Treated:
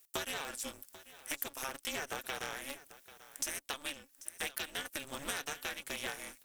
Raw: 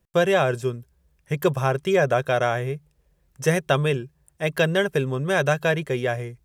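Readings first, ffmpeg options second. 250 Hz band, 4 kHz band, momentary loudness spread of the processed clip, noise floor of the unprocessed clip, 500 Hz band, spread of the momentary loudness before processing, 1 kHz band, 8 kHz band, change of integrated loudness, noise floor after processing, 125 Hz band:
-22.5 dB, -7.5 dB, 11 LU, -67 dBFS, -25.5 dB, 9 LU, -17.5 dB, -1.0 dB, -16.5 dB, -66 dBFS, -33.0 dB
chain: -filter_complex "[0:a]aderivative,acompressor=threshold=-50dB:ratio=16,asplit=2[a][b];[b]aecho=0:1:790:0.141[c];[a][c]amix=inputs=2:normalize=0,aeval=exprs='val(0)*sgn(sin(2*PI*140*n/s))':c=same,volume=14.5dB"

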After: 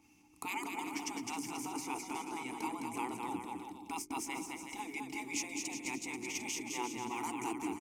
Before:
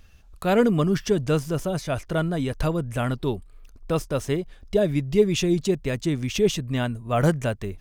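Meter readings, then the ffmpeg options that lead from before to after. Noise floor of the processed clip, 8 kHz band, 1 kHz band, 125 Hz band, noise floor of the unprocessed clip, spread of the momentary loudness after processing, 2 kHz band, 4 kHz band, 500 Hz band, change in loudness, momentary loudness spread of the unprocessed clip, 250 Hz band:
-64 dBFS, -3.0 dB, -6.5 dB, -31.5 dB, -50 dBFS, 4 LU, -8.0 dB, -11.5 dB, -24.5 dB, -15.5 dB, 8 LU, -16.0 dB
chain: -filter_complex "[0:a]highpass=f=130:p=1,afftfilt=real='re*lt(hypot(re,im),0.141)':imag='im*lt(hypot(re,im),0.141)':win_size=1024:overlap=0.75,bandreject=f=50:t=h:w=6,bandreject=f=100:t=h:w=6,bandreject=f=150:t=h:w=6,bandreject=f=200:t=h:w=6,bandreject=f=250:t=h:w=6,bandreject=f=300:t=h:w=6,bandreject=f=350:t=h:w=6,bandreject=f=400:t=h:w=6,aeval=exprs='val(0)+0.000447*(sin(2*PI*60*n/s)+sin(2*PI*2*60*n/s)/2+sin(2*PI*3*60*n/s)/3+sin(2*PI*4*60*n/s)/4+sin(2*PI*5*60*n/s)/5)':c=same,aexciter=amount=13.1:drive=3.4:freq=5.5k,asplit=3[a][b][c];[a]bandpass=f=300:t=q:w=8,volume=0dB[d];[b]bandpass=f=870:t=q:w=8,volume=-6dB[e];[c]bandpass=f=2.24k:t=q:w=8,volume=-9dB[f];[d][e][f]amix=inputs=3:normalize=0,aecho=1:1:210|367.5|485.6|574.2|640.7:0.631|0.398|0.251|0.158|0.1,adynamicequalizer=threshold=0.00126:dfrequency=1700:dqfactor=0.7:tfrequency=1700:tqfactor=0.7:attack=5:release=100:ratio=0.375:range=2:mode=cutabove:tftype=highshelf,volume=10.5dB"

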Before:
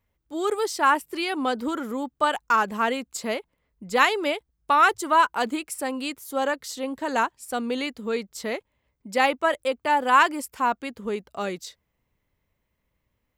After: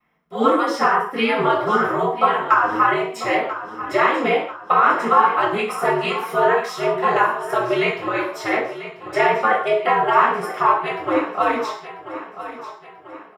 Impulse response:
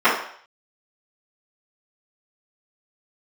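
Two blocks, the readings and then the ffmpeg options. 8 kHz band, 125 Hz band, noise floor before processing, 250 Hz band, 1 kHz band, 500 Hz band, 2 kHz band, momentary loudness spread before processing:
-5.5 dB, n/a, -77 dBFS, +4.0 dB, +6.0 dB, +7.5 dB, +4.5 dB, 13 LU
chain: -filter_complex "[0:a]equalizer=f=220:t=o:w=2.2:g=-5,acrossover=split=350[a][b];[b]acompressor=threshold=-30dB:ratio=6[c];[a][c]amix=inputs=2:normalize=0,aeval=exprs='val(0)*sin(2*PI*110*n/s)':c=same,aecho=1:1:990|1980|2970|3960:0.211|0.0972|0.0447|0.0206[d];[1:a]atrim=start_sample=2205,afade=t=out:st=0.25:d=0.01,atrim=end_sample=11466[e];[d][e]afir=irnorm=-1:irlink=0,volume=-6dB"

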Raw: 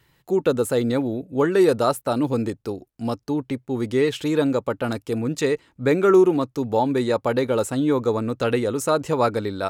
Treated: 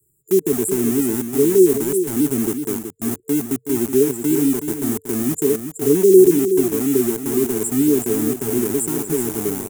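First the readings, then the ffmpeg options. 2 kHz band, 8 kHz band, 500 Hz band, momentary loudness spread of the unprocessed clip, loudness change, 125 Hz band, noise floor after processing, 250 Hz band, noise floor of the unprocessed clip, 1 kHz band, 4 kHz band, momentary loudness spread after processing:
-5.5 dB, +13.5 dB, +3.0 dB, 9 LU, +4.0 dB, -0.5 dB, -54 dBFS, +5.0 dB, -66 dBFS, -10.5 dB, -3.5 dB, 9 LU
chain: -filter_complex "[0:a]afftfilt=real='re*(1-between(b*sr/4096,450,7100))':imag='im*(1-between(b*sr/4096,450,7100))':win_size=4096:overlap=0.75,acrossover=split=160 5500:gain=0.178 1 0.0708[a][b][c];[a][b][c]amix=inputs=3:normalize=0,acrossover=split=140|420|4300[d][e][f][g];[e]aeval=exprs='val(0)*gte(abs(val(0)),0.02)':c=same[h];[d][h][f][g]amix=inputs=4:normalize=0,aexciter=amount=10.8:drive=3.5:freq=6.5k,aecho=1:1:373:0.376,volume=5.5dB"

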